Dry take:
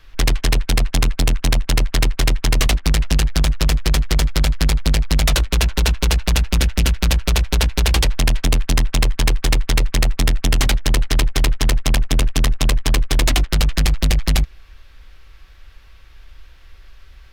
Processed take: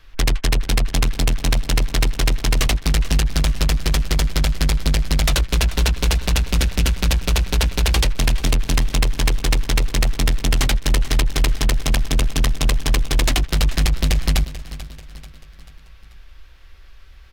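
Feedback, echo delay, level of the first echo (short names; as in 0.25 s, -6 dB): 47%, 0.438 s, -15.0 dB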